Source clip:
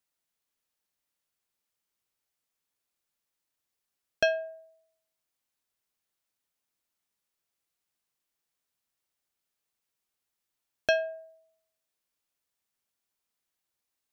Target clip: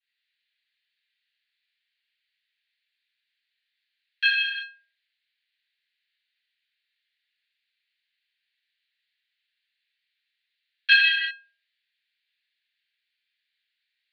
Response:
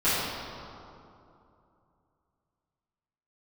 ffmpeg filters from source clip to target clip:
-filter_complex "[1:a]atrim=start_sample=2205,afade=type=out:start_time=0.45:duration=0.01,atrim=end_sample=20286[link_01];[0:a][link_01]afir=irnorm=-1:irlink=0,asettb=1/sr,asplit=3[link_02][link_03][link_04];[link_02]atrim=end=10.894[link_05];[link_03]atrim=start=10.89:end=11.31,asetpts=PTS-STARTPTS,afade=type=in:duration=0.004:curve=qsin,afade=type=out:start_time=0.416:duration=0.004:curve=qsin,acontrast=57[link_06];[link_04]atrim=start=11.306[link_07];[link_05][link_06]acrossfade=duration=0.004:curve1=hsin:curve2=qsin[link_08];[link_08][link_07]acrossfade=duration=0.004:curve1=qsin:curve2=hsin,asuperpass=centerf=2700:order=12:qfactor=0.99"

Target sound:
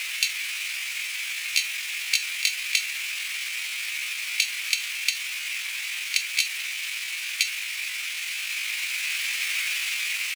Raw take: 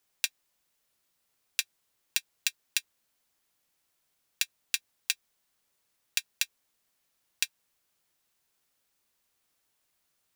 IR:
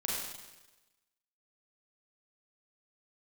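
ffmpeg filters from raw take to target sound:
-filter_complex "[0:a]aeval=exprs='val(0)+0.5*0.0398*sgn(val(0))':channel_layout=same,aeval=exprs='val(0)+0.00126*sin(2*PI*4700*n/s)':channel_layout=same,asplit=2[link_01][link_02];[link_02]asplit=2[link_03][link_04];[link_03]adelay=445,afreqshift=38,volume=-22dB[link_05];[link_04]adelay=890,afreqshift=76,volume=-32.2dB[link_06];[link_05][link_06]amix=inputs=2:normalize=0[link_07];[link_01][link_07]amix=inputs=2:normalize=0,asplit=2[link_08][link_09];[link_09]asetrate=22050,aresample=44100,atempo=2,volume=-17dB[link_10];[link_08][link_10]amix=inputs=2:normalize=0,aeval=exprs='0.841*sin(PI/2*1.78*val(0)/0.841)':channel_layout=same,highpass=frequency=1400:width_type=q:width=5.3,equalizer=frequency=10000:width_type=o:width=0.75:gain=-11,dynaudnorm=framelen=290:gausssize=11:maxgain=4.5dB,highshelf=frequency=2500:gain=-4.5,asetrate=74167,aresample=44100,atempo=0.594604,volume=-1.5dB"

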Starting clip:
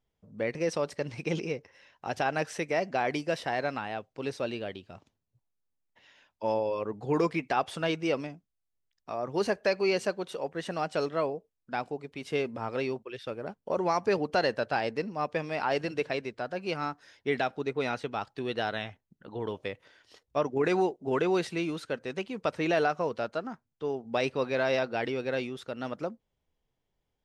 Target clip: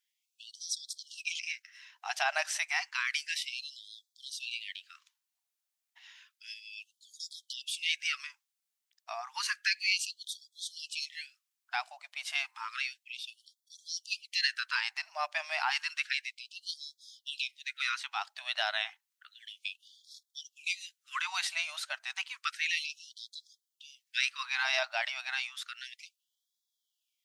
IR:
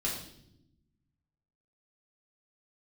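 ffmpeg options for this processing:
-af "tiltshelf=frequency=1200:gain=-9,afftfilt=real='re*gte(b*sr/1024,570*pow(3300/570,0.5+0.5*sin(2*PI*0.31*pts/sr)))':imag='im*gte(b*sr/1024,570*pow(3300/570,0.5+0.5*sin(2*PI*0.31*pts/sr)))':win_size=1024:overlap=0.75"

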